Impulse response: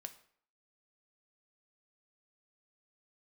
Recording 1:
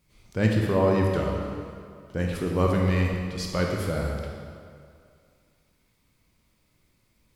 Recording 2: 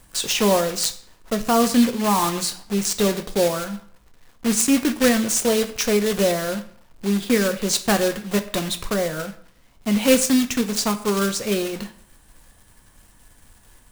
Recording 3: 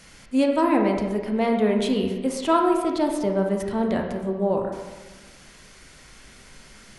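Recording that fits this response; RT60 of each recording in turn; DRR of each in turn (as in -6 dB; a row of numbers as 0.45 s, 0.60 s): 2; 2.3 s, 0.60 s, 1.3 s; -0.5 dB, 7.5 dB, 1.5 dB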